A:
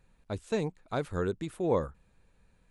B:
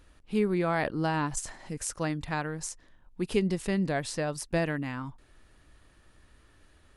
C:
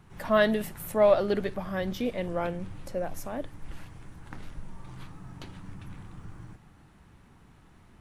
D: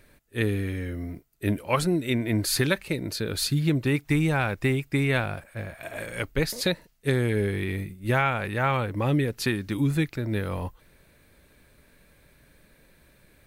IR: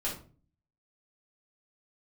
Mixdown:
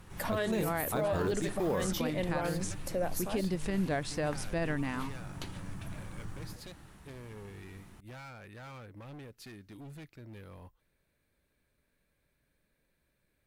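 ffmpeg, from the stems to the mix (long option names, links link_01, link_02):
-filter_complex "[0:a]acrusher=bits=7:mode=log:mix=0:aa=0.000001,volume=2dB[link_01];[1:a]highshelf=frequency=9000:gain=-10.5,volume=0dB[link_02];[2:a]aemphasis=mode=production:type=cd,volume=1dB[link_03];[3:a]asoftclip=type=hard:threshold=-25.5dB,volume=-19dB[link_04];[link_02][link_03]amix=inputs=2:normalize=0,alimiter=limit=-20.5dB:level=0:latency=1:release=289,volume=0dB[link_05];[link_01][link_04][link_05]amix=inputs=3:normalize=0,alimiter=limit=-23dB:level=0:latency=1:release=23"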